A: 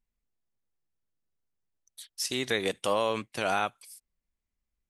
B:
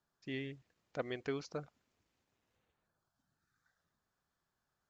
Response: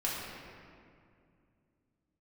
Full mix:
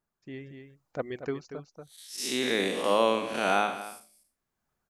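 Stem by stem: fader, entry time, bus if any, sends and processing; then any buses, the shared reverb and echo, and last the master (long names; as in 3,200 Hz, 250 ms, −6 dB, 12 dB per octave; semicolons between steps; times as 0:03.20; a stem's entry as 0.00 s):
−1.5 dB, 0.00 s, no send, echo send −14.5 dB, spectrum smeared in time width 164 ms; low shelf with overshoot 160 Hz −9 dB, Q 1.5; hum removal 53.39 Hz, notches 14
0.0 dB, 0.00 s, no send, echo send −10.5 dB, reverb reduction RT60 0.8 s; parametric band 3,700 Hz −8.5 dB 1.9 octaves; automatic ducking −13 dB, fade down 0.60 s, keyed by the first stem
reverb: not used
echo: single-tap delay 235 ms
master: automatic gain control gain up to 6.5 dB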